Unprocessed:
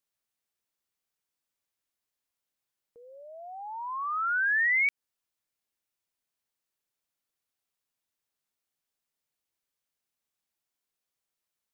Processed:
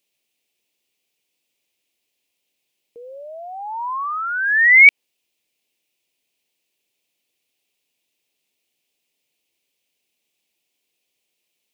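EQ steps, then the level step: dynamic EQ 1100 Hz, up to +6 dB, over -42 dBFS, Q 0.73; bell 390 Hz +15 dB 2.9 oct; resonant high shelf 1900 Hz +10 dB, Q 3; 0.0 dB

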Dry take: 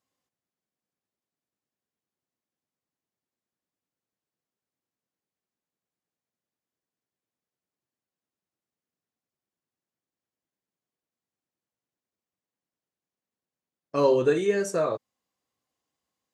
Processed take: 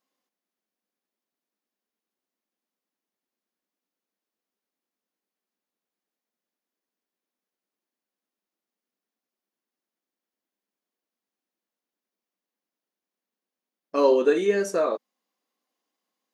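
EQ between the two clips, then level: brick-wall FIR high-pass 180 Hz; bell 7900 Hz -6.5 dB 0.37 oct; +2.0 dB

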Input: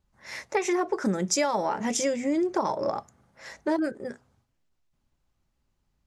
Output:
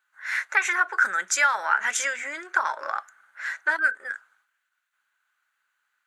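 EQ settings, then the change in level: resonant high-pass 1500 Hz, resonance Q 7.1; bell 5200 Hz -10.5 dB 0.34 oct; +4.5 dB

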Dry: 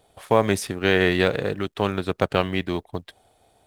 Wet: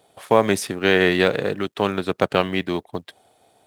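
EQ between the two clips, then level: HPF 140 Hz 12 dB/oct; +2.5 dB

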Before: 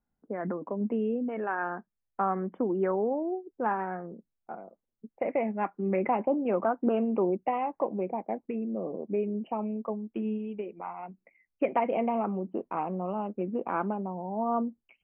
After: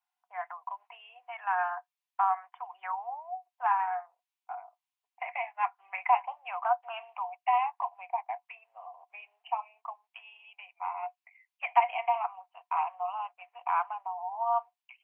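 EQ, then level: rippled Chebyshev high-pass 700 Hz, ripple 9 dB; +8.5 dB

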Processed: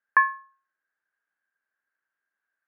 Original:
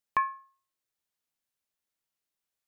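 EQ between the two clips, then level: HPF 250 Hz; synth low-pass 1600 Hz, resonance Q 16; 0.0 dB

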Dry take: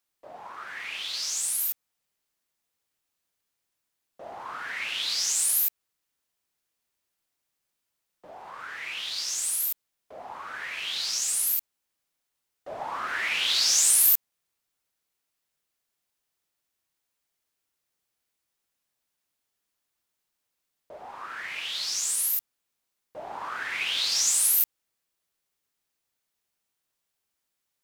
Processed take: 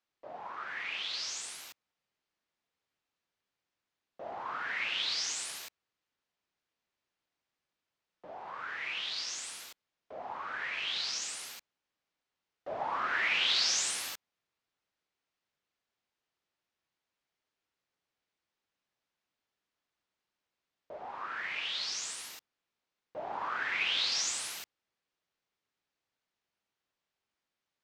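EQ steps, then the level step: air absorption 140 m; low shelf 66 Hz -7.5 dB; 0.0 dB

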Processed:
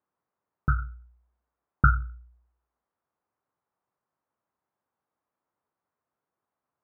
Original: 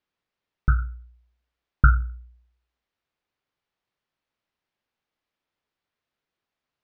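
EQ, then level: HPF 78 Hz 12 dB/oct; synth low-pass 1100 Hz, resonance Q 1.6; 0.0 dB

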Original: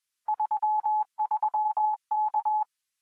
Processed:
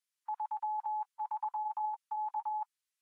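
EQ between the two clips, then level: steep high-pass 850 Hz 48 dB/oct; -7.0 dB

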